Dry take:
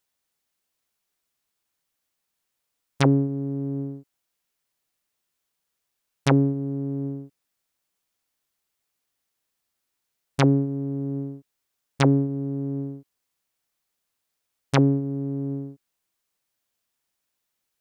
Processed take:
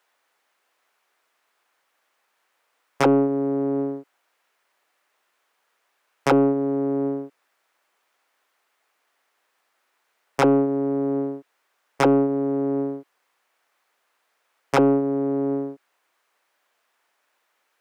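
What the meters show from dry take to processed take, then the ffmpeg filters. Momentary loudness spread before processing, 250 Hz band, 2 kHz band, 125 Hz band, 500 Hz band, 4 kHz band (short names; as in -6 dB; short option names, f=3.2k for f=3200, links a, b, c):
15 LU, +2.5 dB, +2.5 dB, -9.0 dB, +8.5 dB, -2.5 dB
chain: -filter_complex "[0:a]acrossover=split=310 2200:gain=0.2 1 0.2[a][b][c];[a][b][c]amix=inputs=3:normalize=0,asoftclip=type=tanh:threshold=-17dB,asplit=2[d][e];[e]highpass=f=720:p=1,volume=17dB,asoftclip=type=tanh:threshold=-17dB[f];[d][f]amix=inputs=2:normalize=0,lowpass=f=7.1k:p=1,volume=-6dB,volume=8dB"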